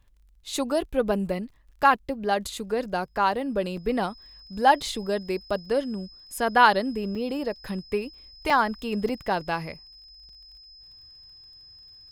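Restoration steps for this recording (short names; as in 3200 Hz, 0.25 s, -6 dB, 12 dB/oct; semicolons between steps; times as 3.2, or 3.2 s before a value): de-click; notch 5100 Hz, Q 30; interpolate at 1.5/1.82/3.77/7.15/7.56/8.5/9.09/10.29, 3.7 ms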